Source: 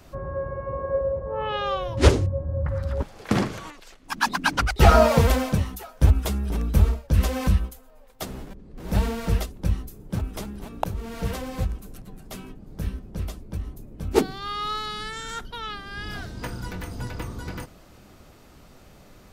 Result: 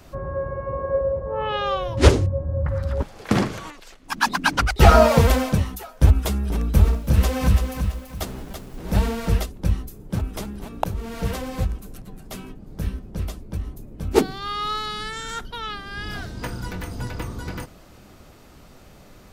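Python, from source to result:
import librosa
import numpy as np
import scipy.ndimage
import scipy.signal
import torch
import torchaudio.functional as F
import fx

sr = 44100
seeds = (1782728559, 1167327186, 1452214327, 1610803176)

y = fx.echo_crushed(x, sr, ms=333, feedback_pct=35, bits=8, wet_db=-6.5, at=(6.51, 8.81))
y = y * 10.0 ** (2.5 / 20.0)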